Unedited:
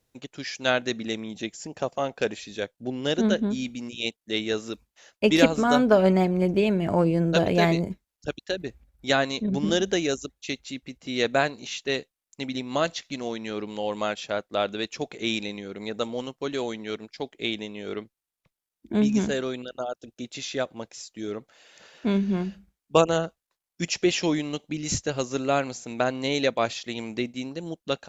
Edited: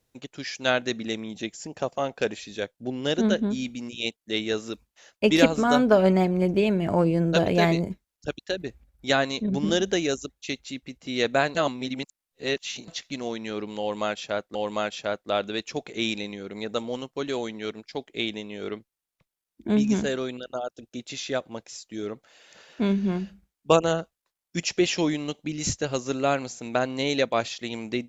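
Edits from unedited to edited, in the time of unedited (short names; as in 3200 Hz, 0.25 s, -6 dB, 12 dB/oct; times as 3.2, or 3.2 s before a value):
11.55–12.88 reverse
13.8–14.55 loop, 2 plays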